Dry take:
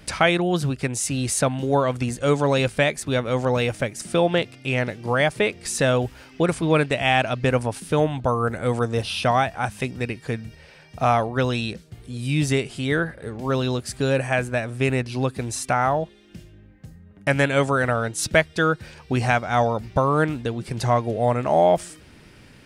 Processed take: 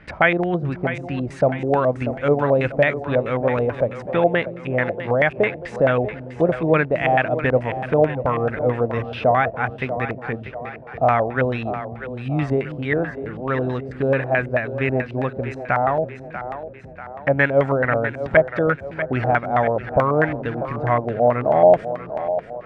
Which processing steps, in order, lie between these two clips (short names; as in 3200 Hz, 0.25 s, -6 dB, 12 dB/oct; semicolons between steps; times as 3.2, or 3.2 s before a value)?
20.17–20.92 sample gate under -34.5 dBFS; split-band echo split 320 Hz, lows 0.325 s, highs 0.64 s, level -11 dB; LFO low-pass square 4.6 Hz 650–1900 Hz; gain -1 dB